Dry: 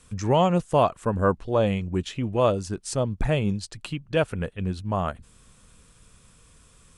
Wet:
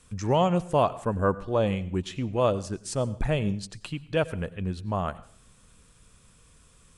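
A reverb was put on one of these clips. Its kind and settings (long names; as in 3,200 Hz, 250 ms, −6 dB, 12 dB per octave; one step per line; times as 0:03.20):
dense smooth reverb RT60 0.51 s, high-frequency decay 0.9×, pre-delay 80 ms, DRR 17.5 dB
level −2.5 dB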